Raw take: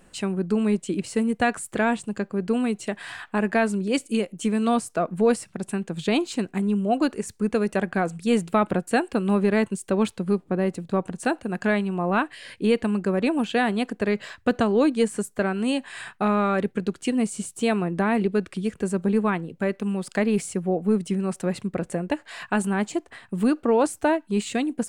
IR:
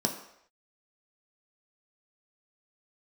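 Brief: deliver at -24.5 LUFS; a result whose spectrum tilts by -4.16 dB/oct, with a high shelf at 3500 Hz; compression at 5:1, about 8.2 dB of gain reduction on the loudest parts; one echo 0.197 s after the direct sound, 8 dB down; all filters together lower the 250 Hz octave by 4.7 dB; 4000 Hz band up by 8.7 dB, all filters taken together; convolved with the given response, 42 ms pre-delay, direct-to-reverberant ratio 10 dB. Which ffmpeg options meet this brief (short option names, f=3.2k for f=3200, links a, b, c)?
-filter_complex "[0:a]equalizer=f=250:t=o:g=-6,highshelf=f=3.5k:g=3.5,equalizer=f=4k:t=o:g=9,acompressor=threshold=-26dB:ratio=5,aecho=1:1:197:0.398,asplit=2[a][b];[1:a]atrim=start_sample=2205,adelay=42[c];[b][c]afir=irnorm=-1:irlink=0,volume=-17.5dB[d];[a][d]amix=inputs=2:normalize=0,volume=4.5dB"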